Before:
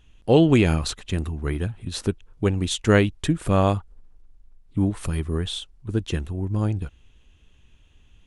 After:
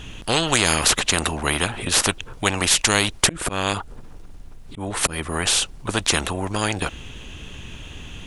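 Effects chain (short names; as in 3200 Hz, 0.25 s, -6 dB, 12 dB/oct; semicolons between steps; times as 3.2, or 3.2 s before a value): 3.23–5.47 auto swell 0.499 s; spectral compressor 4:1; gain +3.5 dB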